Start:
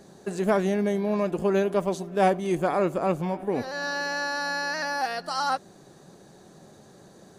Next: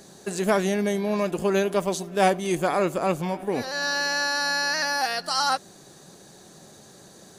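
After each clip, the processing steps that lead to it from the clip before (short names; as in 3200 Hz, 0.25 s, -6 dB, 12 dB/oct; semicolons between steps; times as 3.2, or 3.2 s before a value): high shelf 2200 Hz +10.5 dB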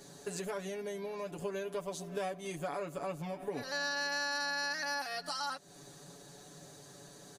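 compressor 6:1, threshold -31 dBFS, peak gain reduction 15 dB; comb 7 ms, depth 89%; gain -7 dB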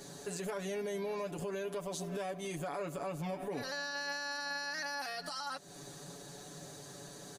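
limiter -34.5 dBFS, peak gain reduction 10.5 dB; gain +4 dB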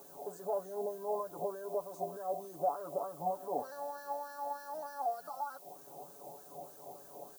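wah 3.3 Hz 720–1700 Hz, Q 4.5; Chebyshev band-stop 610–8300 Hz, order 2; added noise violet -74 dBFS; gain +17 dB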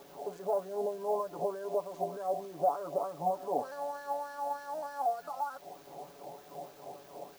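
median filter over 5 samples; gain +4 dB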